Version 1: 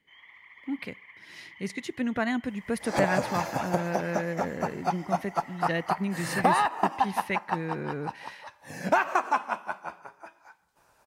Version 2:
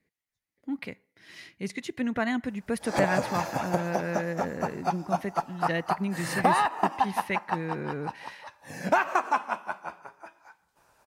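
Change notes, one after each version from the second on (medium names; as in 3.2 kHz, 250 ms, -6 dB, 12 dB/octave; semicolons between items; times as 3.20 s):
first sound: muted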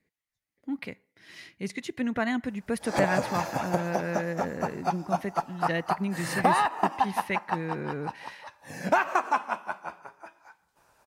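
no change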